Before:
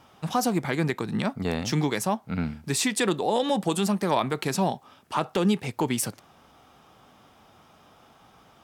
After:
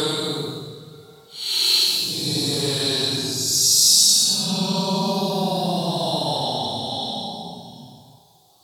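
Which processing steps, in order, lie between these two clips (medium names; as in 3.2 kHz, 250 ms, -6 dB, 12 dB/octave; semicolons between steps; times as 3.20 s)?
Paulstretch 18×, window 0.05 s, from 4.33 s; resonant high shelf 2.9 kHz +12 dB, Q 3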